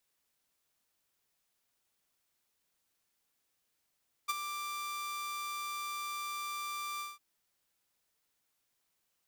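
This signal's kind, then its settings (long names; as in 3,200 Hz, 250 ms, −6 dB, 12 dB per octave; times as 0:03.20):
note with an ADSR envelope saw 1,180 Hz, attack 18 ms, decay 27 ms, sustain −9 dB, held 2.72 s, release 184 ms −25.5 dBFS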